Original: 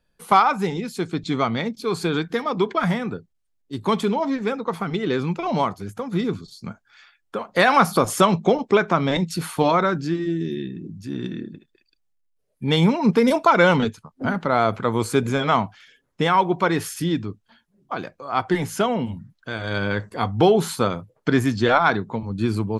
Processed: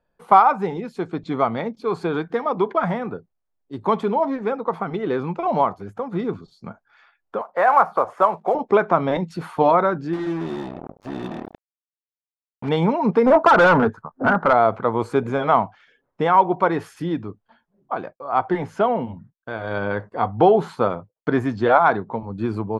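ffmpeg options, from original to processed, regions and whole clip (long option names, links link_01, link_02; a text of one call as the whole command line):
ffmpeg -i in.wav -filter_complex "[0:a]asettb=1/sr,asplit=3[link_01][link_02][link_03];[link_01]atrim=end=7.414[link_04];[link_02]atrim=start=7.41:end=8.55,asetpts=PTS-STARTPTS,afade=type=in:duration=0.004:curve=qsin,afade=type=out:start_time=1.136:duration=0.004:curve=qsin,acrossover=split=500 2100:gain=0.158 1 0.126[link_05][link_06][link_07];[link_05][link_06][link_07]amix=inputs=3:normalize=0,acrusher=bits=5:mode=log:mix=0:aa=0.000001[link_08];[link_03]atrim=start=8.546[link_09];[link_04][link_08]acrossfade=duration=0.004:curve1=hsin:curve2=qsin[link_10];[link_10][link_09]acrossfade=duration=0.004:curve1=qsin:curve2=hsin,asettb=1/sr,asplit=3[link_11][link_12][link_13];[link_11]atrim=end=10.134[link_14];[link_12]atrim=start=10.13:end=12.69,asetpts=PTS-STARTPTS,afade=type=in:duration=0.004:curve=qsin,afade=type=out:start_time=2.556:duration=0.004:curve=qsin,highshelf=frequency=2400:gain=7.5,acrusher=bits=4:mix=0:aa=0.5[link_15];[link_13]atrim=start=12.686[link_16];[link_14][link_15]acrossfade=duration=0.004:curve1=hsin:curve2=qsin[link_17];[link_17][link_16]acrossfade=duration=0.004:curve1=qsin:curve2=hsin,asettb=1/sr,asplit=3[link_18][link_19][link_20];[link_18]atrim=end=13.264[link_21];[link_19]atrim=start=13.26:end=14.53,asetpts=PTS-STARTPTS,afade=type=in:duration=0.004:curve=qsin,afade=type=out:start_time=1.266:duration=0.004:curve=qsin,highshelf=frequency=2000:width_type=q:width=3:gain=-9,acontrast=36,asoftclip=type=hard:threshold=-11.5dB[link_22];[link_20]atrim=start=14.526[link_23];[link_21][link_22]acrossfade=duration=0.004:curve1=hsin:curve2=qsin[link_24];[link_24][link_23]acrossfade=duration=0.004:curve1=qsin:curve2=hsin,asettb=1/sr,asplit=3[link_25][link_26][link_27];[link_25]atrim=end=17.954[link_28];[link_26]atrim=start=17.95:end=21.35,asetpts=PTS-STARTPTS,afade=type=in:duration=0.004:curve=qsin,afade=type=out:start_time=3.396:duration=0.004:curve=qsin,agate=range=-33dB:threshold=-42dB:ratio=3:release=100:detection=peak,highshelf=frequency=10000:gain=-9.5[link_29];[link_27]atrim=start=21.346[link_30];[link_28][link_29]acrossfade=duration=0.004:curve1=hsin:curve2=qsin[link_31];[link_31][link_30]acrossfade=duration=0.004:curve1=qsin:curve2=hsin,lowpass=frequency=1800:poles=1,equalizer=frequency=770:width_type=o:width=2.1:gain=10.5,volume=-5dB" out.wav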